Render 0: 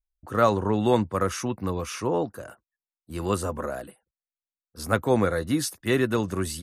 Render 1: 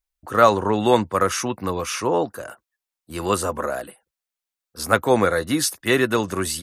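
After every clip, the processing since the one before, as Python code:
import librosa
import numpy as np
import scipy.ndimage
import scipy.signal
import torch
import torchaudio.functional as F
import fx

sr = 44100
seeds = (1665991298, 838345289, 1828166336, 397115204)

y = fx.low_shelf(x, sr, hz=320.0, db=-10.0)
y = y * 10.0 ** (8.0 / 20.0)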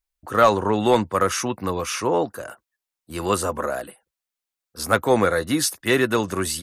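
y = 10.0 ** (-4.0 / 20.0) * np.tanh(x / 10.0 ** (-4.0 / 20.0))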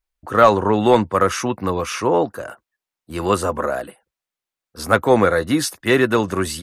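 y = fx.high_shelf(x, sr, hz=4200.0, db=-8.0)
y = y * 10.0 ** (4.0 / 20.0)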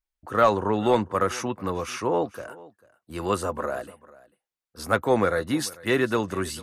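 y = x + 10.0 ** (-21.5 / 20.0) * np.pad(x, (int(444 * sr / 1000.0), 0))[:len(x)]
y = y * 10.0 ** (-7.0 / 20.0)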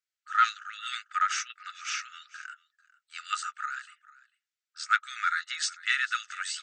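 y = fx.brickwall_bandpass(x, sr, low_hz=1200.0, high_hz=8300.0)
y = y * 10.0 ** (2.0 / 20.0)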